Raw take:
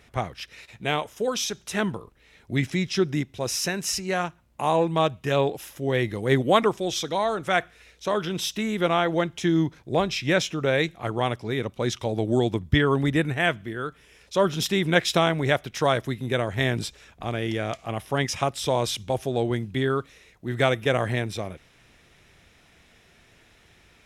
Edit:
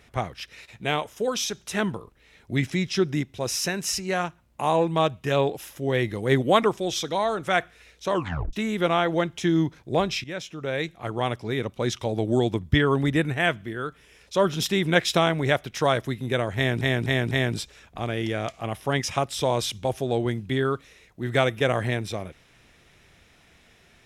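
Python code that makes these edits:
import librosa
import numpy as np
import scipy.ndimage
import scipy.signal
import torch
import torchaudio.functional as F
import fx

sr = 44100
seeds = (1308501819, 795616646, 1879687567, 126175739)

y = fx.edit(x, sr, fx.tape_stop(start_s=8.12, length_s=0.41),
    fx.fade_in_from(start_s=10.24, length_s=1.17, floor_db=-15.0),
    fx.repeat(start_s=16.56, length_s=0.25, count=4), tone=tone)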